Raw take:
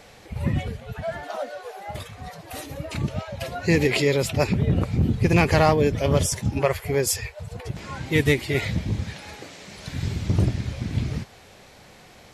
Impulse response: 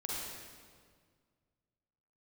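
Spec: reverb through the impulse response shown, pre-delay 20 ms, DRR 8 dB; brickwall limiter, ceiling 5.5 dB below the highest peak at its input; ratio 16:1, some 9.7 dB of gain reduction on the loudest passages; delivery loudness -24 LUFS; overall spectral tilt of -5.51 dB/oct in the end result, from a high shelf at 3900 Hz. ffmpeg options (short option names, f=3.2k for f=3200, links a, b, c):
-filter_complex "[0:a]highshelf=f=3.9k:g=-3,acompressor=threshold=-24dB:ratio=16,alimiter=limit=-21dB:level=0:latency=1,asplit=2[a][b];[1:a]atrim=start_sample=2205,adelay=20[c];[b][c]afir=irnorm=-1:irlink=0,volume=-10.5dB[d];[a][d]amix=inputs=2:normalize=0,volume=7.5dB"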